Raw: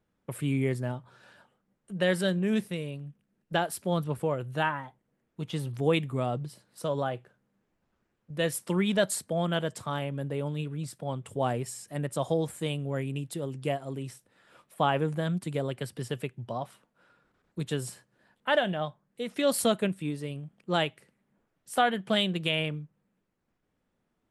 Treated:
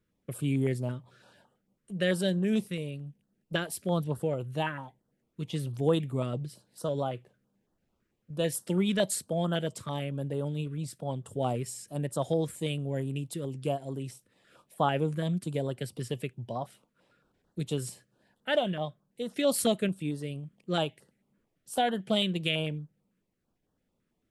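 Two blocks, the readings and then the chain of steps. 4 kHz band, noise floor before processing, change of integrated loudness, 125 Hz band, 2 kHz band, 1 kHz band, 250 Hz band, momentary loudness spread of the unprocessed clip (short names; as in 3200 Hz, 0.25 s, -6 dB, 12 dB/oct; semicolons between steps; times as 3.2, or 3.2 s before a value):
-1.5 dB, -78 dBFS, -1.0 dB, 0.0 dB, -4.5 dB, -3.5 dB, 0.0 dB, 12 LU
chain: stepped notch 9 Hz 780–2300 Hz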